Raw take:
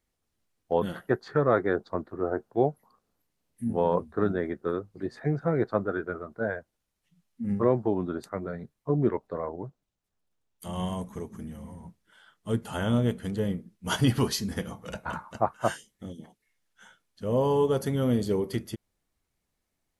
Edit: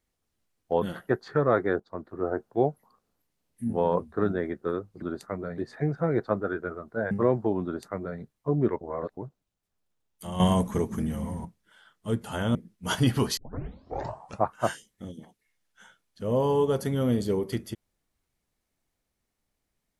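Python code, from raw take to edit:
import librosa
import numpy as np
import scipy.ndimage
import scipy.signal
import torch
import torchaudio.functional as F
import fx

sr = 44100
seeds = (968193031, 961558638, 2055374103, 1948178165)

y = fx.edit(x, sr, fx.fade_in_from(start_s=1.8, length_s=0.43, floor_db=-13.0),
    fx.cut(start_s=6.55, length_s=0.97),
    fx.duplicate(start_s=8.05, length_s=0.56, to_s=5.02),
    fx.reverse_span(start_s=9.22, length_s=0.36),
    fx.clip_gain(start_s=10.81, length_s=1.05, db=10.0),
    fx.cut(start_s=12.96, length_s=0.6),
    fx.tape_start(start_s=14.38, length_s=1.08), tone=tone)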